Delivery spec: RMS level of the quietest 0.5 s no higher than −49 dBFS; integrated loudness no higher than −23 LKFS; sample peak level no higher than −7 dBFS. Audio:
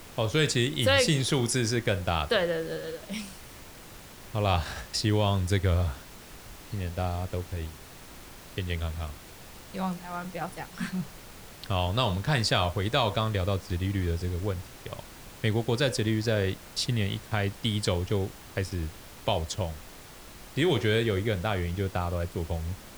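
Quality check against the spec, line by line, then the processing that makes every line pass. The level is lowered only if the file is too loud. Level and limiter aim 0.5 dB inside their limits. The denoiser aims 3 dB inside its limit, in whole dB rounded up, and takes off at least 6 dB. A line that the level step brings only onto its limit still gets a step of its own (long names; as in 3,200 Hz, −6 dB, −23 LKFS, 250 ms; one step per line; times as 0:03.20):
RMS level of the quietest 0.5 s −47 dBFS: out of spec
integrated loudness −29.0 LKFS: in spec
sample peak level −9.0 dBFS: in spec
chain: broadband denoise 6 dB, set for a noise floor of −47 dBFS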